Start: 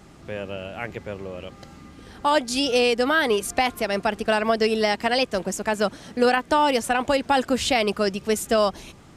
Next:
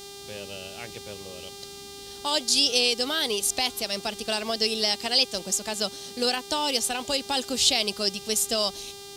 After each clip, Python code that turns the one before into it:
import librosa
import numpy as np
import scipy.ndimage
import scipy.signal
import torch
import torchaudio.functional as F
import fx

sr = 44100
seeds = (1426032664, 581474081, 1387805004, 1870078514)

y = fx.dmg_buzz(x, sr, base_hz=400.0, harmonics=39, level_db=-37.0, tilt_db=-7, odd_only=False)
y = fx.high_shelf_res(y, sr, hz=2700.0, db=13.5, q=1.5)
y = F.gain(torch.from_numpy(y), -8.5).numpy()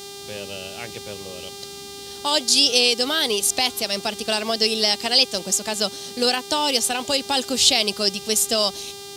y = scipy.signal.sosfilt(scipy.signal.butter(2, 70.0, 'highpass', fs=sr, output='sos'), x)
y = F.gain(torch.from_numpy(y), 5.0).numpy()